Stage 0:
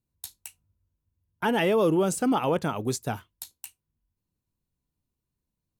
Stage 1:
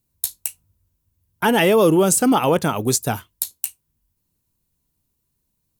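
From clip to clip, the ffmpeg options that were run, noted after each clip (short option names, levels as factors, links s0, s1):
-af "highshelf=f=6500:g=11.5,volume=2.37"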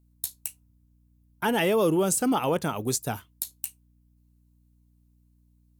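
-af "aeval=exprs='val(0)+0.00224*(sin(2*PI*60*n/s)+sin(2*PI*2*60*n/s)/2+sin(2*PI*3*60*n/s)/3+sin(2*PI*4*60*n/s)/4+sin(2*PI*5*60*n/s)/5)':c=same,volume=0.398"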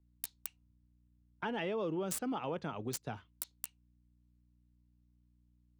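-filter_complex "[0:a]acrossover=split=170|4900[s0][s1][s2];[s2]acrusher=bits=3:mix=0:aa=0.000001[s3];[s0][s1][s3]amix=inputs=3:normalize=0,acompressor=threshold=0.0282:ratio=2,volume=0.447"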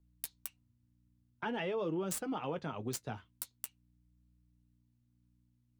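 -af "flanger=delay=5.6:depth=3.9:regen=-47:speed=0.47:shape=triangular,volume=1.58"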